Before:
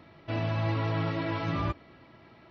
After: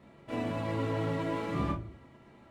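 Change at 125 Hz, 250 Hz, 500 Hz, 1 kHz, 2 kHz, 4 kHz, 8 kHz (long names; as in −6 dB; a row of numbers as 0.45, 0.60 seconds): −5.5 dB, 0.0 dB, +0.5 dB, −2.5 dB, −4.5 dB, −5.5 dB, can't be measured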